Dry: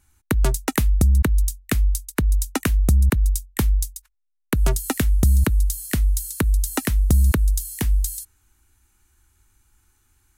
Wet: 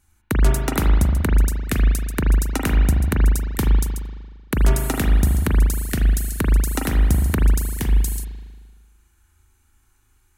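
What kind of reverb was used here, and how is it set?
spring reverb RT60 1.5 s, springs 38 ms, chirp 60 ms, DRR −0.5 dB
level −1.5 dB

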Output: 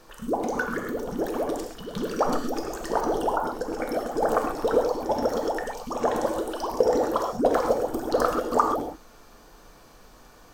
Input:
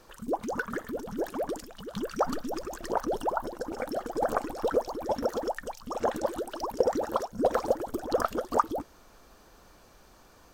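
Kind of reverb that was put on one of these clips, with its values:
reverb whose tail is shaped and stops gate 160 ms flat, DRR 2 dB
level +2.5 dB

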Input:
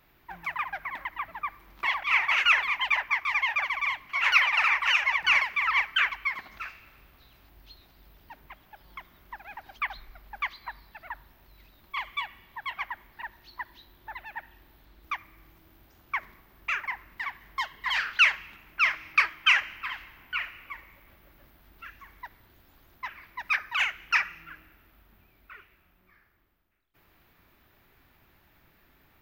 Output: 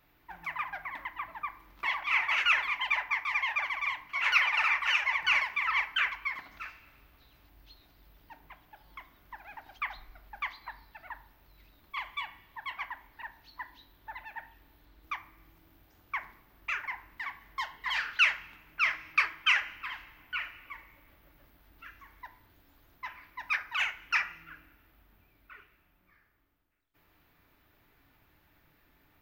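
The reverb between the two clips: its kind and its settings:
feedback delay network reverb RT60 0.5 s, high-frequency decay 0.55×, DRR 8 dB
level −4.5 dB

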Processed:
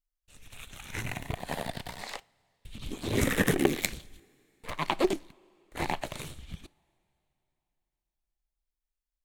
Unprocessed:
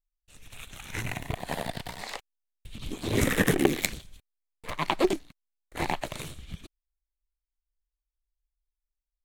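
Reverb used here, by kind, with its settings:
coupled-rooms reverb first 0.35 s, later 3.3 s, from −18 dB, DRR 20 dB
level −2 dB

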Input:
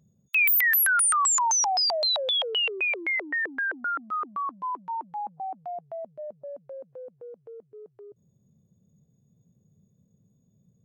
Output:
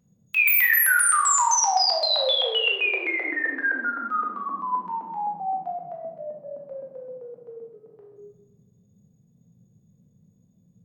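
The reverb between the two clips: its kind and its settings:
rectangular room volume 550 cubic metres, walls mixed, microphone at 1.9 metres
level −1.5 dB

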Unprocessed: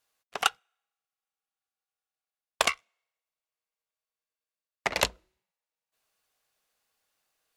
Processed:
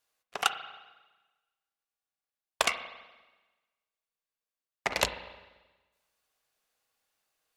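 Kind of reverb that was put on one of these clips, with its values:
spring reverb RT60 1.2 s, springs 34/44/48 ms, chirp 30 ms, DRR 9.5 dB
level −2 dB

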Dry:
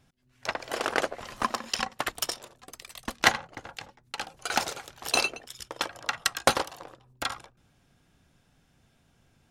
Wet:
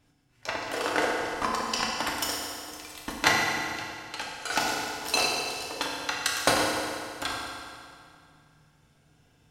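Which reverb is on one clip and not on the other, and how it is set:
feedback delay network reverb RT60 2.3 s, low-frequency decay 0.9×, high-frequency decay 0.85×, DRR −3.5 dB
level −3 dB

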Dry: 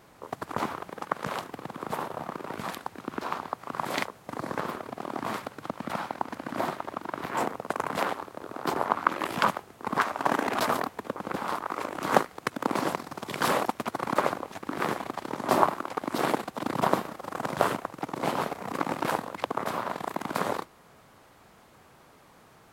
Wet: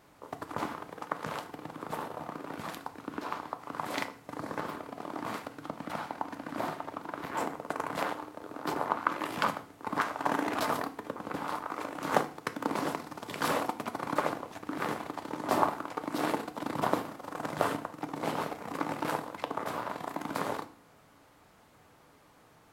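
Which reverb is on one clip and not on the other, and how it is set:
feedback delay network reverb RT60 0.47 s, low-frequency decay 1.4×, high-frequency decay 0.95×, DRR 8 dB
level −5 dB

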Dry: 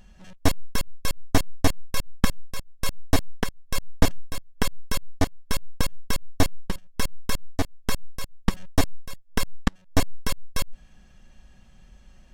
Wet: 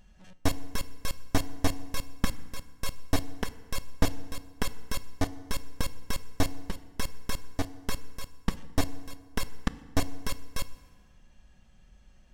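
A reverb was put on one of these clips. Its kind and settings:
feedback delay network reverb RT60 1.6 s, low-frequency decay 1.05×, high-frequency decay 0.65×, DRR 13.5 dB
level −6 dB

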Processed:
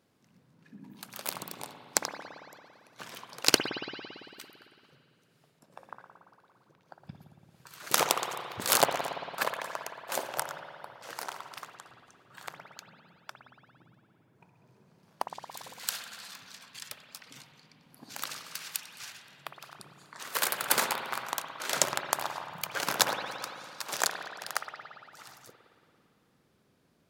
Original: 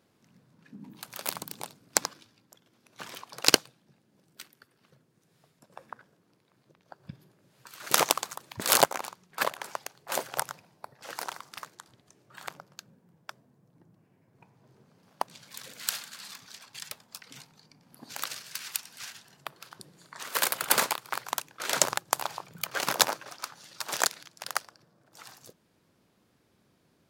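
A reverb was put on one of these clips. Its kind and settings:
spring reverb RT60 2.4 s, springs 56 ms, chirp 45 ms, DRR 4.5 dB
level −2.5 dB

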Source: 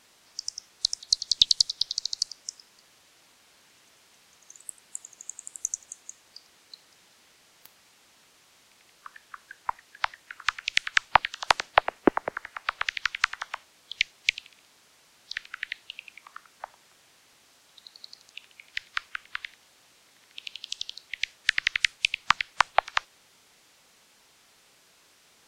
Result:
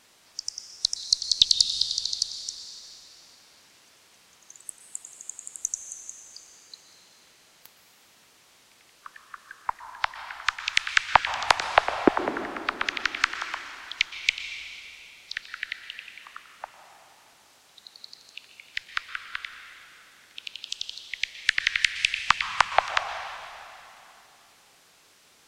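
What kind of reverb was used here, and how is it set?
dense smooth reverb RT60 3 s, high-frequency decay 0.95×, pre-delay 105 ms, DRR 8 dB
level +1 dB

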